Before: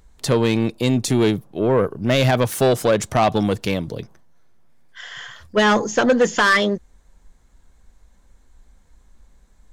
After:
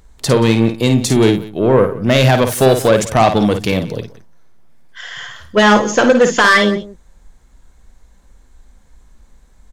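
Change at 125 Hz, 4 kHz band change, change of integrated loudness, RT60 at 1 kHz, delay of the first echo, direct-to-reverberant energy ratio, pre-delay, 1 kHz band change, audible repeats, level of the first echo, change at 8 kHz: +6.0 dB, +5.5 dB, +6.0 dB, no reverb audible, 53 ms, no reverb audible, no reverb audible, +6.0 dB, 2, −7.5 dB, +6.0 dB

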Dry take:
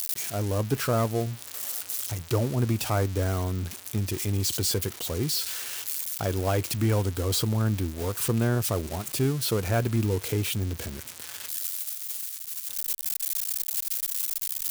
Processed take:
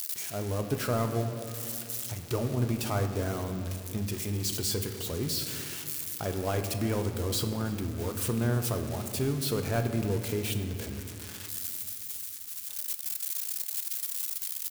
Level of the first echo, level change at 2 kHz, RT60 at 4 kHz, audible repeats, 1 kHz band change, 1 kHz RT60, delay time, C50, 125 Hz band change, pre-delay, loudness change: −21.0 dB, −3.5 dB, 1.2 s, 1, −3.5 dB, 2.1 s, 318 ms, 8.0 dB, −4.5 dB, 5 ms, −4.0 dB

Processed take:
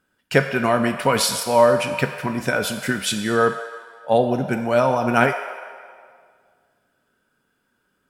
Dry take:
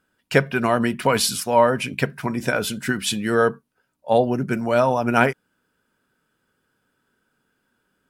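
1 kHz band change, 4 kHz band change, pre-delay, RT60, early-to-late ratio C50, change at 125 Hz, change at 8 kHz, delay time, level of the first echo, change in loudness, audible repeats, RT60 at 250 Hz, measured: +1.0 dB, +1.0 dB, 3 ms, 2.0 s, 8.0 dB, 0.0 dB, +1.0 dB, no echo audible, no echo audible, +1.0 dB, no echo audible, 2.3 s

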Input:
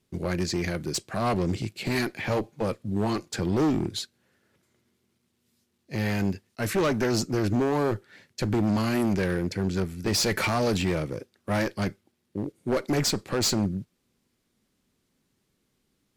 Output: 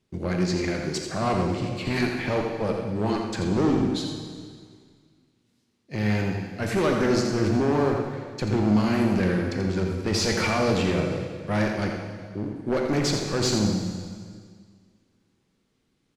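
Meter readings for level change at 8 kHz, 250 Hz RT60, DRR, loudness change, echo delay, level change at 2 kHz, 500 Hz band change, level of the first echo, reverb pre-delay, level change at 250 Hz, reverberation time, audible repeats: −1.5 dB, 2.0 s, 1.0 dB, +2.0 dB, 85 ms, +2.0 dB, +2.5 dB, −7.5 dB, 20 ms, +3.0 dB, 1.9 s, 1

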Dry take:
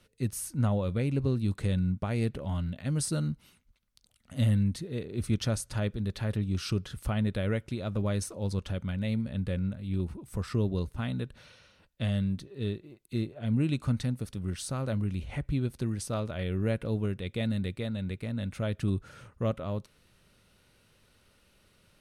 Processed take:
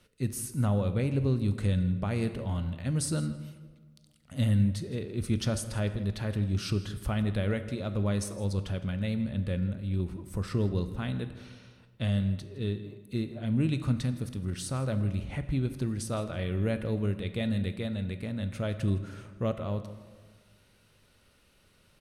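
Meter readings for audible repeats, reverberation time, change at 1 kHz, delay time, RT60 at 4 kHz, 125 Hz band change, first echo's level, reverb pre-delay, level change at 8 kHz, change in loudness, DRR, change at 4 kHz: 1, 1.5 s, +0.5 dB, 162 ms, 0.85 s, +0.5 dB, −18.0 dB, 19 ms, 0.0 dB, +0.5 dB, 10.0 dB, +0.5 dB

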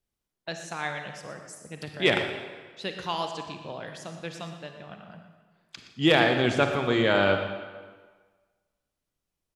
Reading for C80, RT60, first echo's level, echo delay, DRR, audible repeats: 6.5 dB, 1.5 s, −13.0 dB, 120 ms, 5.0 dB, 1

